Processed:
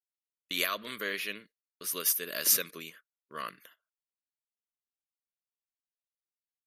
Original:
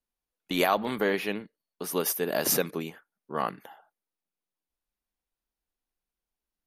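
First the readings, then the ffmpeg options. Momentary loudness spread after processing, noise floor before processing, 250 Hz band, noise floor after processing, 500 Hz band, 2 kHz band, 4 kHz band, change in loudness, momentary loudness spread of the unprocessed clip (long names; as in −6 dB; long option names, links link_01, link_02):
20 LU, below −85 dBFS, −14.5 dB, below −85 dBFS, −13.0 dB, −2.0 dB, +1.0 dB, −1.5 dB, 13 LU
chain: -af "agate=range=-18dB:threshold=-47dB:ratio=16:detection=peak,asuperstop=centerf=810:order=4:qfactor=2.1,tiltshelf=frequency=1100:gain=-9,volume=-6.5dB"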